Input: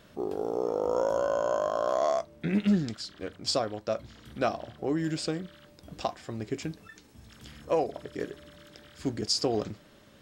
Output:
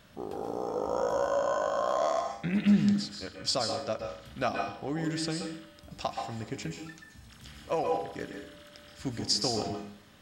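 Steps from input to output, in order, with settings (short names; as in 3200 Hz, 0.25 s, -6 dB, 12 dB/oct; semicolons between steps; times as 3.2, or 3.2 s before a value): bell 390 Hz -7.5 dB 1.1 oct; reverb RT60 0.55 s, pre-delay 0.122 s, DRR 2.5 dB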